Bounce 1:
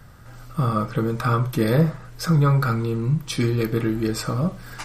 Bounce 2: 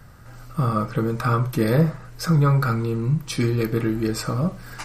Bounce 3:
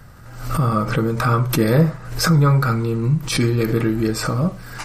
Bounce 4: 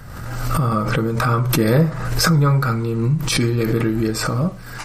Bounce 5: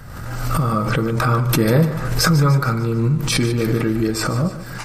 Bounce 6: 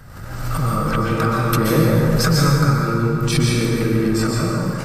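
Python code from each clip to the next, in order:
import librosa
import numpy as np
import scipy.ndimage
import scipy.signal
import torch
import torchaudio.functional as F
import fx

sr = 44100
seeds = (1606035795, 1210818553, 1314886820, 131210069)

y1 = fx.peak_eq(x, sr, hz=3400.0, db=-4.5, octaves=0.21)
y2 = fx.pre_swell(y1, sr, db_per_s=80.0)
y2 = y2 * librosa.db_to_amplitude(3.0)
y3 = fx.pre_swell(y2, sr, db_per_s=37.0)
y3 = y3 * librosa.db_to_amplitude(-1.0)
y4 = fx.echo_feedback(y3, sr, ms=148, feedback_pct=53, wet_db=-13.5)
y5 = fx.rev_plate(y4, sr, seeds[0], rt60_s=2.4, hf_ratio=0.55, predelay_ms=110, drr_db=-2.5)
y5 = y5 * librosa.db_to_amplitude(-4.0)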